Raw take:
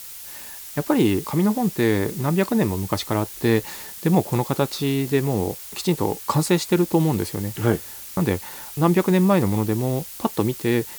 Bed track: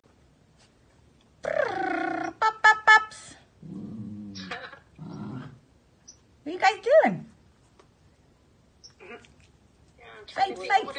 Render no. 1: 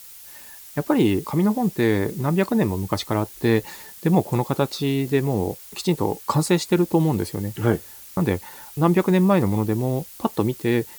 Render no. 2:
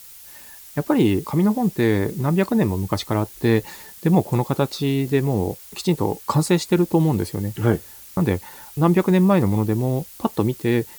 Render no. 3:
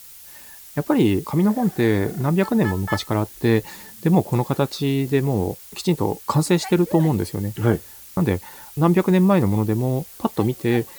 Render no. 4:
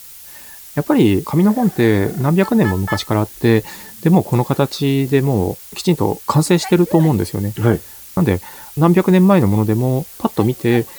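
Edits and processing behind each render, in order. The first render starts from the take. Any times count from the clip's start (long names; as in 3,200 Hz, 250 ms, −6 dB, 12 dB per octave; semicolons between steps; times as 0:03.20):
broadband denoise 6 dB, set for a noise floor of −38 dBFS
low-shelf EQ 190 Hz +3.5 dB
mix in bed track −14.5 dB
level +5 dB; brickwall limiter −2 dBFS, peak gain reduction 3 dB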